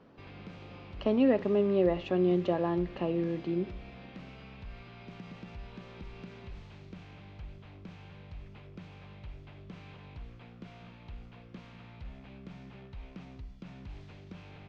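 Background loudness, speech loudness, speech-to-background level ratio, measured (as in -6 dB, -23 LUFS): -48.5 LUFS, -29.0 LUFS, 19.5 dB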